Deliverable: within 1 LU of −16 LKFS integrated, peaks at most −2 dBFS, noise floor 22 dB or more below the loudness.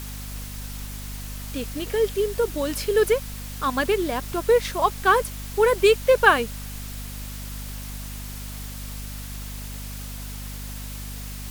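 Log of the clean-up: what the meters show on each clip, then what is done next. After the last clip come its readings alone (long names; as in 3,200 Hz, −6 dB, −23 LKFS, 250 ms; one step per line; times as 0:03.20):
mains hum 50 Hz; hum harmonics up to 250 Hz; level of the hum −33 dBFS; background noise floor −35 dBFS; target noise floor −47 dBFS; integrated loudness −24.5 LKFS; sample peak −2.5 dBFS; target loudness −16.0 LKFS
→ hum removal 50 Hz, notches 5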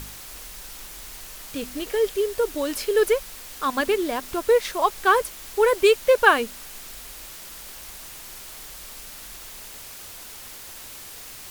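mains hum none found; background noise floor −41 dBFS; target noise floor −44 dBFS
→ noise reduction from a noise print 6 dB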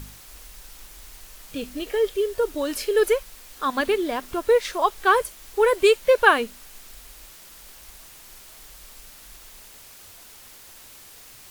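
background noise floor −47 dBFS; integrated loudness −22.0 LKFS; sample peak −3.0 dBFS; target loudness −16.0 LKFS
→ level +6 dB
brickwall limiter −2 dBFS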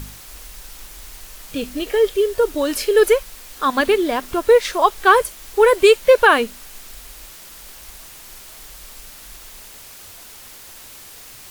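integrated loudness −16.5 LKFS; sample peak −2.0 dBFS; background noise floor −41 dBFS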